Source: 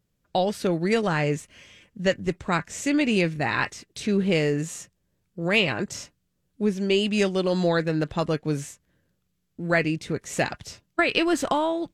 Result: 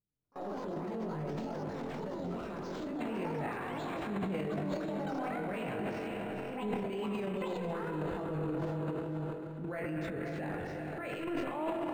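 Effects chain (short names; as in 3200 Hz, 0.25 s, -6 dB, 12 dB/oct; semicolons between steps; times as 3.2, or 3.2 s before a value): G.711 law mismatch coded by mu; echoes that change speed 86 ms, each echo +7 st, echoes 3; high shelf 4100 Hz -6.5 dB; diffused feedback echo 0.486 s, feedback 46%, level -11.5 dB; compressor, threshold -23 dBFS, peak gain reduction 9 dB; spring tank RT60 3.3 s, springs 45/52 ms, chirp 30 ms, DRR 2.5 dB; limiter -20.5 dBFS, peak gain reduction 8.5 dB; chorus 2.4 Hz, delay 19 ms, depth 3.5 ms; transient shaper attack -6 dB, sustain +12 dB; bell 2600 Hz -14.5 dB 2.4 oct, from 3 s 10000 Hz; gate with hold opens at -31 dBFS; decimation joined by straight lines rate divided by 4×; gain -4.5 dB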